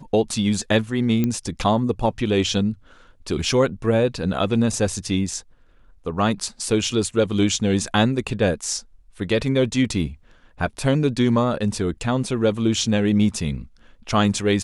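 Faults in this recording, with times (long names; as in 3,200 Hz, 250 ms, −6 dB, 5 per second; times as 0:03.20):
0:01.24: click −10 dBFS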